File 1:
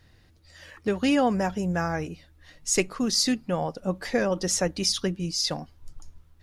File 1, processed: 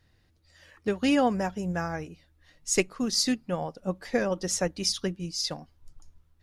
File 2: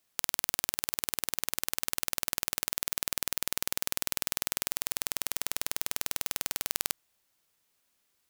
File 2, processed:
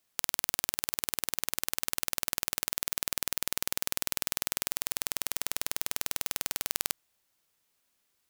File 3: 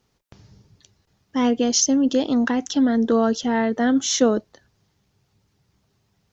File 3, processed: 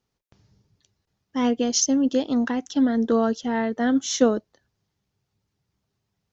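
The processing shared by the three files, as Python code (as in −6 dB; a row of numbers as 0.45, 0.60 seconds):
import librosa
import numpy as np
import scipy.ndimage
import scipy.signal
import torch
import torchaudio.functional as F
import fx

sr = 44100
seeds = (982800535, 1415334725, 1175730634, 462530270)

y = fx.upward_expand(x, sr, threshold_db=-34.0, expansion=1.5)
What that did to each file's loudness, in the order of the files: −2.0, 0.0, −2.5 LU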